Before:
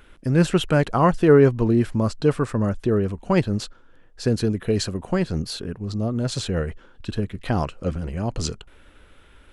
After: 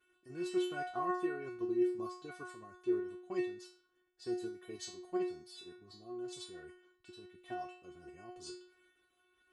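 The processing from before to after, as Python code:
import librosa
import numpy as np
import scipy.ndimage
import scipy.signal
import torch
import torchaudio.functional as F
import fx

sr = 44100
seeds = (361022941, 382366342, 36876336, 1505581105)

y = fx.level_steps(x, sr, step_db=10)
y = scipy.signal.sosfilt(scipy.signal.butter(2, 120.0, 'highpass', fs=sr, output='sos'), y)
y = fx.peak_eq(y, sr, hz=1600.0, db=-2.5, octaves=0.22)
y = fx.stiff_resonator(y, sr, f0_hz=360.0, decay_s=0.53, stiffness=0.002)
y = y * 10.0 ** (4.5 / 20.0)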